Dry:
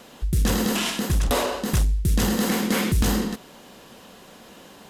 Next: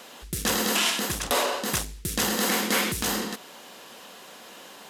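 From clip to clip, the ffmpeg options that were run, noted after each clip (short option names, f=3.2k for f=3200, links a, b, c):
-filter_complex "[0:a]highpass=f=700:p=1,asplit=2[a][b];[b]alimiter=limit=-17dB:level=0:latency=1:release=422,volume=0.5dB[c];[a][c]amix=inputs=2:normalize=0,volume=-2.5dB"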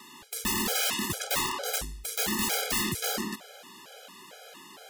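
-af "aeval=exprs='(mod(7.94*val(0)+1,2)-1)/7.94':c=same,afftfilt=real='re*gt(sin(2*PI*2.2*pts/sr)*(1-2*mod(floor(b*sr/1024/420),2)),0)':imag='im*gt(sin(2*PI*2.2*pts/sr)*(1-2*mod(floor(b*sr/1024/420),2)),0)':win_size=1024:overlap=0.75"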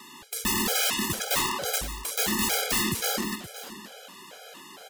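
-af "aecho=1:1:521:0.211,volume=2.5dB"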